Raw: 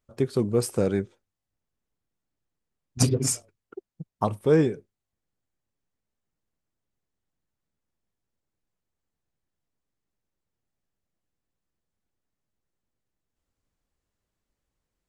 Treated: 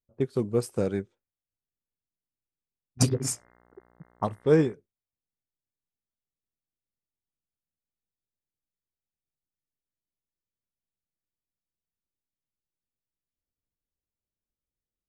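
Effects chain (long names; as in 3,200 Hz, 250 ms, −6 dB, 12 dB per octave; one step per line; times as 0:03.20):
0:03.07–0:04.73: hum with harmonics 60 Hz, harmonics 35, −49 dBFS −1 dB per octave
low-pass that shuts in the quiet parts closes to 600 Hz, open at −24 dBFS
expander for the loud parts 1.5 to 1, over −40 dBFS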